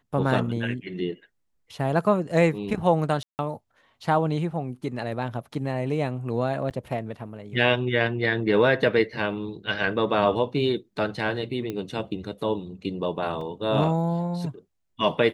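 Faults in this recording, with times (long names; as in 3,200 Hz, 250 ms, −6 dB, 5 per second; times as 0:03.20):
0:03.23–0:03.39: drop-out 159 ms
0:06.70–0:06.71: drop-out 8.4 ms
0:11.70: click −18 dBFS
0:13.41: drop-out 3.2 ms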